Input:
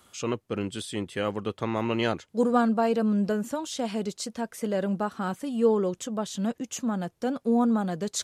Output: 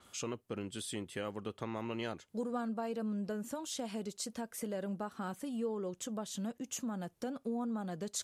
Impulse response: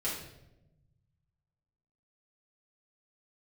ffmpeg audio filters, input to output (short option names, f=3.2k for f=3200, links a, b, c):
-filter_complex "[0:a]acompressor=threshold=-38dB:ratio=2.5,asplit=2[a][b];[1:a]atrim=start_sample=2205,afade=t=out:st=0.14:d=0.01,atrim=end_sample=6615,asetrate=57330,aresample=44100[c];[b][c]afir=irnorm=-1:irlink=0,volume=-27dB[d];[a][d]amix=inputs=2:normalize=0,adynamicequalizer=threshold=0.00158:dfrequency=7800:dqfactor=0.7:tfrequency=7800:tqfactor=0.7:attack=5:release=100:ratio=0.375:range=3.5:mode=boostabove:tftype=highshelf,volume=-2.5dB"